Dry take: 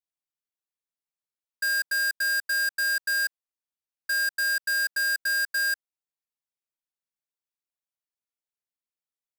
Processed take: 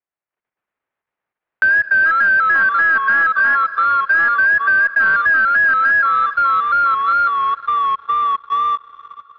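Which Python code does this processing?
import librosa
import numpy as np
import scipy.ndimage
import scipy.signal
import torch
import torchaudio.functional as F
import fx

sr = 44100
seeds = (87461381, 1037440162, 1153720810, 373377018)

y = x + 10.0 ** (-3.5 / 20.0) * np.pad(x, (int(292 * sr / 1000.0), 0))[:len(x)]
y = fx.vibrato(y, sr, rate_hz=2.9, depth_cents=69.0)
y = fx.leveller(y, sr, passes=3)
y = fx.peak_eq(y, sr, hz=260.0, db=-4.5, octaves=1.0)
y = fx.rev_schroeder(y, sr, rt60_s=3.7, comb_ms=31, drr_db=17.5)
y = fx.level_steps(y, sr, step_db=11)
y = fx.echo_pitch(y, sr, ms=123, semitones=-3, count=2, db_per_echo=-6.0)
y = fx.clip_asym(y, sr, top_db=-20.5, bottom_db=-16.5)
y = fx.low_shelf(y, sr, hz=100.0, db=-11.5)
y = fx.leveller(y, sr, passes=2)
y = scipy.signal.sosfilt(scipy.signal.butter(4, 2100.0, 'lowpass', fs=sr, output='sos'), y)
y = fx.band_squash(y, sr, depth_pct=70)
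y = y * librosa.db_to_amplitude(7.0)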